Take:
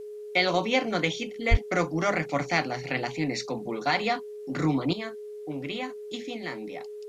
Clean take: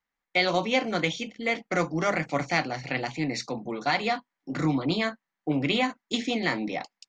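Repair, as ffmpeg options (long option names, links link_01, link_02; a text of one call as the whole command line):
ffmpeg -i in.wav -filter_complex "[0:a]bandreject=frequency=420:width=30,asplit=3[link_01][link_02][link_03];[link_01]afade=type=out:start_time=1.5:duration=0.02[link_04];[link_02]highpass=frequency=140:width=0.5412,highpass=frequency=140:width=1.3066,afade=type=in:start_time=1.5:duration=0.02,afade=type=out:start_time=1.62:duration=0.02[link_05];[link_03]afade=type=in:start_time=1.62:duration=0.02[link_06];[link_04][link_05][link_06]amix=inputs=3:normalize=0,agate=range=-21dB:threshold=-32dB,asetnsamples=nb_out_samples=441:pad=0,asendcmd='4.93 volume volume 9dB',volume=0dB" out.wav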